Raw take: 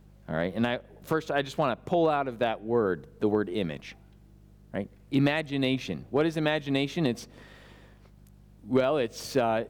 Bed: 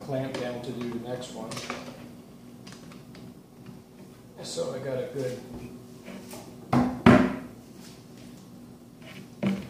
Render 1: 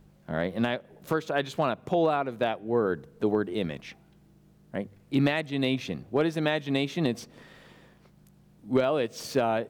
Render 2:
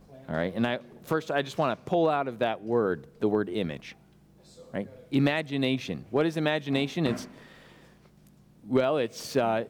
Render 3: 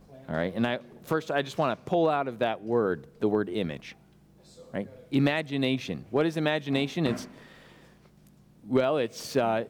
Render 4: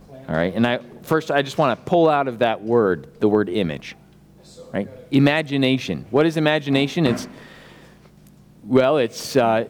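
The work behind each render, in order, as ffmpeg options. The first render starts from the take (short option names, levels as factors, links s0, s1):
-af "bandreject=f=50:t=h:w=4,bandreject=f=100:t=h:w=4"
-filter_complex "[1:a]volume=0.106[s0];[0:a][s0]amix=inputs=2:normalize=0"
-af anull
-af "volume=2.66"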